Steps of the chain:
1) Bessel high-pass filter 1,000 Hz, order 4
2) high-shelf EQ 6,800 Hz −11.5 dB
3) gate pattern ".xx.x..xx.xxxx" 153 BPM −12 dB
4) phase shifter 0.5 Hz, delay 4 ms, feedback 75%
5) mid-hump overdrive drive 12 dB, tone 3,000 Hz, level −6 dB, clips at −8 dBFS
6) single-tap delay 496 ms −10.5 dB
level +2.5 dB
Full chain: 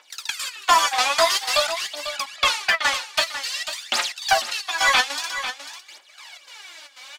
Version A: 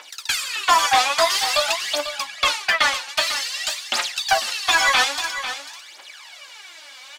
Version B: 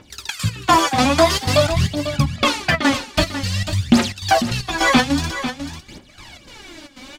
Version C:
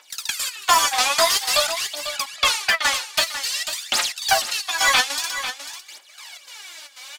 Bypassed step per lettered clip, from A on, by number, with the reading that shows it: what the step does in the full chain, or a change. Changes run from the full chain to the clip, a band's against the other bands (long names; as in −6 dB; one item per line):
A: 3, change in crest factor −1.5 dB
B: 1, 250 Hz band +28.0 dB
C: 2, 8 kHz band +5.0 dB